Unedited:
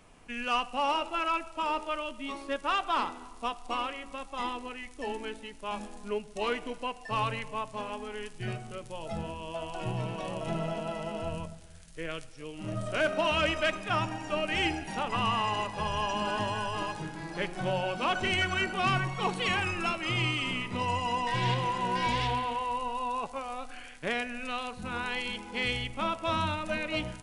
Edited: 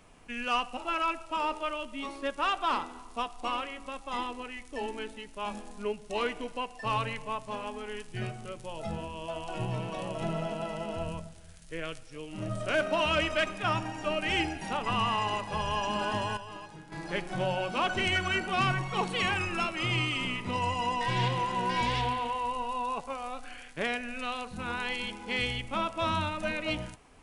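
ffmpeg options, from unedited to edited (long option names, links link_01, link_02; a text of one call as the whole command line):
ffmpeg -i in.wav -filter_complex "[0:a]asplit=4[link_01][link_02][link_03][link_04];[link_01]atrim=end=0.772[link_05];[link_02]atrim=start=1.028:end=16.632[link_06];[link_03]atrim=start=16.628:end=17.182,asetpts=PTS-STARTPTS,volume=-10dB[link_07];[link_04]atrim=start=17.178[link_08];[link_05][link_06]acrossfade=duration=0.004:curve1=hsin:curve2=hsin[link_09];[link_09][link_07]acrossfade=duration=0.004:curve1=hsin:curve2=hsin[link_10];[link_10][link_08]acrossfade=duration=0.004:curve1=hsin:curve2=hsin" out.wav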